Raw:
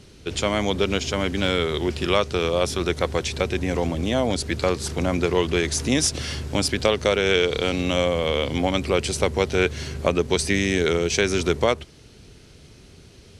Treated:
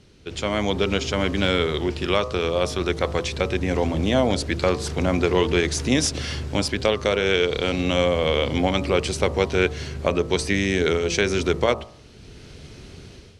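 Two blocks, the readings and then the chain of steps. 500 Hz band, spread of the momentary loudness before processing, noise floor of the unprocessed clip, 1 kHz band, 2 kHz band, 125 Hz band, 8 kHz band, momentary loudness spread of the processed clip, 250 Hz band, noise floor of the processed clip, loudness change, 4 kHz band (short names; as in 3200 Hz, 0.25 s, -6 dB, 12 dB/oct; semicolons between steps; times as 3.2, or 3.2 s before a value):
+0.5 dB, 4 LU, -49 dBFS, +0.5 dB, +0.5 dB, +1.0 dB, -3.0 dB, 4 LU, +0.5 dB, -46 dBFS, +0.5 dB, -0.5 dB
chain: high shelf 9000 Hz -11.5 dB; de-hum 56.57 Hz, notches 23; AGC; gain -4.5 dB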